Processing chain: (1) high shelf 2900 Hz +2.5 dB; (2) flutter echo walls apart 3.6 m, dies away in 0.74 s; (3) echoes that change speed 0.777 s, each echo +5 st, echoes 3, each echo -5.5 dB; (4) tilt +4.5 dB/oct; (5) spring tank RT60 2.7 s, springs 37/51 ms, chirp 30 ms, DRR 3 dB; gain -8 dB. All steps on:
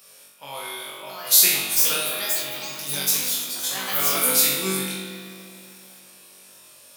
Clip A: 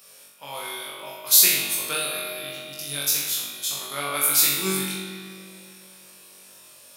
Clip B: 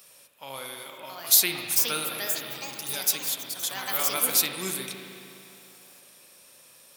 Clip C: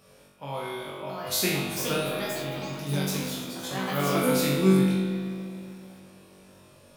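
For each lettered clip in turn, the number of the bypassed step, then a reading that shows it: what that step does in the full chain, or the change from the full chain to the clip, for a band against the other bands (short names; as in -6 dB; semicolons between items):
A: 3, loudness change -1.5 LU; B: 2, 125 Hz band -2.0 dB; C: 4, 8 kHz band -16.0 dB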